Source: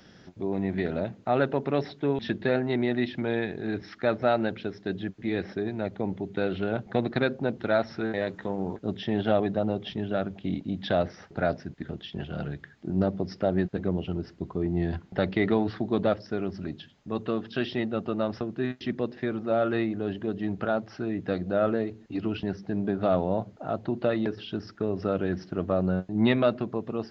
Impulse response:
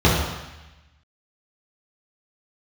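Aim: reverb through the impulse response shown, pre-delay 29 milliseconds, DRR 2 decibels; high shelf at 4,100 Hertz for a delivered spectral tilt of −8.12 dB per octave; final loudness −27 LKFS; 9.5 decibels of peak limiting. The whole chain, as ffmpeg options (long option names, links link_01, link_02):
-filter_complex "[0:a]highshelf=frequency=4100:gain=-7.5,alimiter=limit=-20dB:level=0:latency=1,asplit=2[link_01][link_02];[1:a]atrim=start_sample=2205,adelay=29[link_03];[link_02][link_03]afir=irnorm=-1:irlink=0,volume=-24.5dB[link_04];[link_01][link_04]amix=inputs=2:normalize=0,volume=-1.5dB"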